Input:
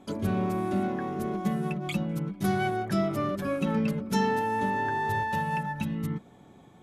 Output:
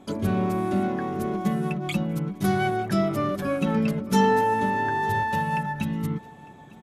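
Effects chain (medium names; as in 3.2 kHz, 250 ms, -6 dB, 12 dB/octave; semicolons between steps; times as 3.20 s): 4.07–4.54 s: doubling 16 ms -5 dB; on a send: feedback delay 902 ms, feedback 34%, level -22 dB; on the sum: trim +3.5 dB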